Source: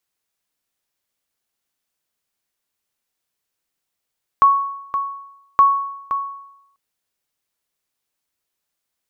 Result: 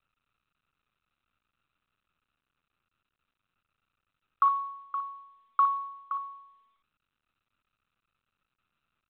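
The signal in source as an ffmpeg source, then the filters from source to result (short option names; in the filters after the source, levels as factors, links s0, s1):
-f lavfi -i "aevalsrc='0.531*(sin(2*PI*1110*mod(t,1.17))*exp(-6.91*mod(t,1.17)/0.84)+0.316*sin(2*PI*1110*max(mod(t,1.17)-0.52,0))*exp(-6.91*max(mod(t,1.17)-0.52,0)/0.84))':d=2.34:s=44100"
-af "asuperpass=centerf=1300:order=4:qfactor=5.7,aecho=1:1:37|60:0.168|0.266" -ar 8000 -c:a pcm_mulaw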